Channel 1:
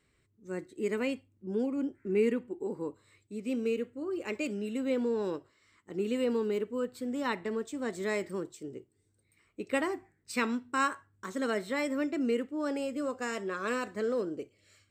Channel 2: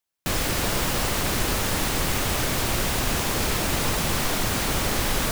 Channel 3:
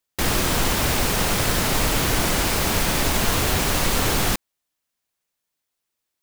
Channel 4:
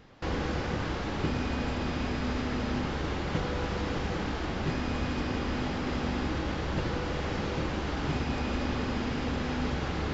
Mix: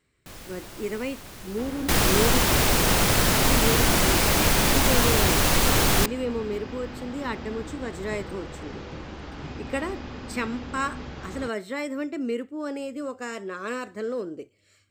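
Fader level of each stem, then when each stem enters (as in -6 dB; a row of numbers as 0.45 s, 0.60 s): +1.0 dB, -18.0 dB, +0.5 dB, -6.5 dB; 0.00 s, 0.00 s, 1.70 s, 1.35 s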